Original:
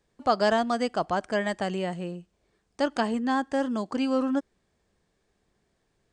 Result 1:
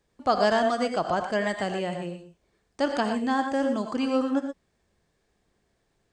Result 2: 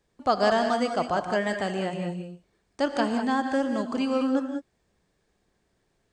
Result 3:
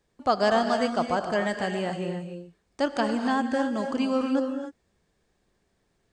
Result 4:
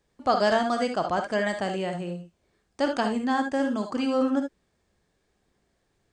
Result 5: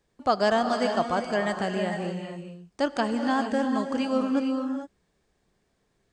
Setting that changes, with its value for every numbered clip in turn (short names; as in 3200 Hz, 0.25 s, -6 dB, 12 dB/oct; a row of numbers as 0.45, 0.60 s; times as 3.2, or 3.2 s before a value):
non-linear reverb, gate: 140, 220, 320, 90, 480 ms